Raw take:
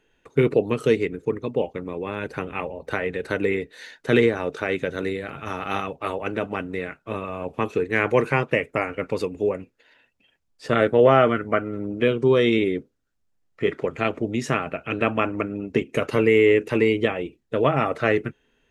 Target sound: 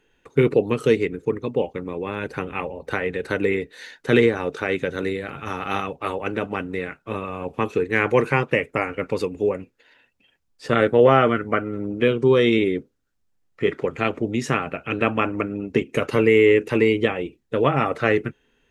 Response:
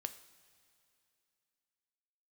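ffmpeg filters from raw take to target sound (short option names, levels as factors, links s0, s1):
-af "bandreject=f=640:w=12,volume=1.19"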